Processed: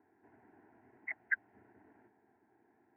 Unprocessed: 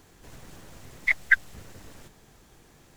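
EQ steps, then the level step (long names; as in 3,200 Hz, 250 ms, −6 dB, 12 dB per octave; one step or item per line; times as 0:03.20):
high-pass filter 130 Hz 24 dB per octave
low-pass filter 1,600 Hz 24 dB per octave
phaser with its sweep stopped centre 800 Hz, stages 8
−8.5 dB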